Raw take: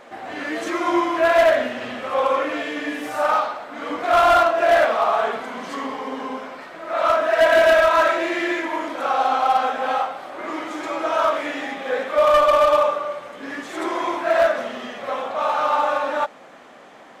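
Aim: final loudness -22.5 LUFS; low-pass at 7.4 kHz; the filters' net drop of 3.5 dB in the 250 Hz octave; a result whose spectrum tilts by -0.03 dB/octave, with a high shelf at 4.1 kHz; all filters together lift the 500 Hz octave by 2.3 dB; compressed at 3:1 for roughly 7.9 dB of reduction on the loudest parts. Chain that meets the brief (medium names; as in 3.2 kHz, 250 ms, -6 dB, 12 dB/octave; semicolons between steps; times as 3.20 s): low-pass 7.4 kHz; peaking EQ 250 Hz -8 dB; peaking EQ 500 Hz +4.5 dB; treble shelf 4.1 kHz +3 dB; compression 3:1, threshold -21 dBFS; trim +2 dB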